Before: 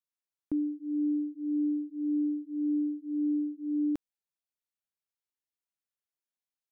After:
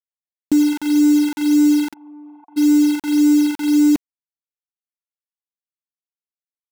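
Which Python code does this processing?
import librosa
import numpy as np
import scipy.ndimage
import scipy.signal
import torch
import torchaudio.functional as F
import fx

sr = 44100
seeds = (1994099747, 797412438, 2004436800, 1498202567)

y = fx.curve_eq(x, sr, hz=(140.0, 230.0, 480.0, 860.0), db=(0, 10, 2, 8))
y = fx.quant_dither(y, sr, seeds[0], bits=6, dither='none')
y = fx.formant_cascade(y, sr, vowel='a', at=(1.92, 2.56), fade=0.02)
y = y * 10.0 ** (8.5 / 20.0)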